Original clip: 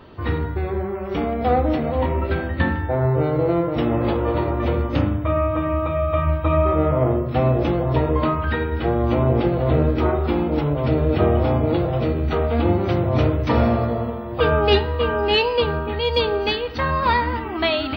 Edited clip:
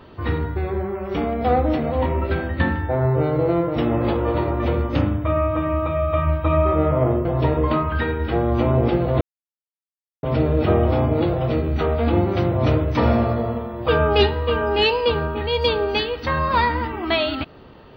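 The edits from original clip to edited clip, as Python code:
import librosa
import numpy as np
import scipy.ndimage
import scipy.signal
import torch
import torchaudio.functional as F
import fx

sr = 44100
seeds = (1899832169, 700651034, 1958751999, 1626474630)

y = fx.edit(x, sr, fx.cut(start_s=7.25, length_s=0.52),
    fx.silence(start_s=9.73, length_s=1.02), tone=tone)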